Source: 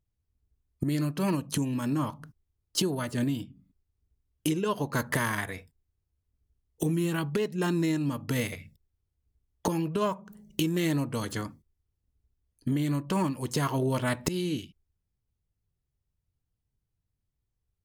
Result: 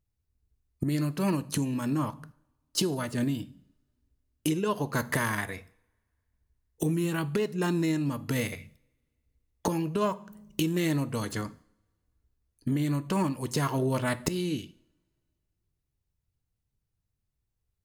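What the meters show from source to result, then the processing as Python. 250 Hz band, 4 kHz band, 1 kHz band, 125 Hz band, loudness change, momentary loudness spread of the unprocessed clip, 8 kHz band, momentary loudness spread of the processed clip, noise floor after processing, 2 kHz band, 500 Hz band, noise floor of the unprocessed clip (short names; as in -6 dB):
0.0 dB, -0.5 dB, 0.0 dB, 0.0 dB, 0.0 dB, 8 LU, 0.0 dB, 9 LU, -82 dBFS, 0.0 dB, 0.0 dB, -82 dBFS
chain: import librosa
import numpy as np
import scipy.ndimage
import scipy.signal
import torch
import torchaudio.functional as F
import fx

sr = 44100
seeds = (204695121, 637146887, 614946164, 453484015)

y = fx.notch(x, sr, hz=3200.0, q=18.0)
y = fx.rev_double_slope(y, sr, seeds[0], early_s=0.6, late_s=2.4, knee_db=-28, drr_db=16.5)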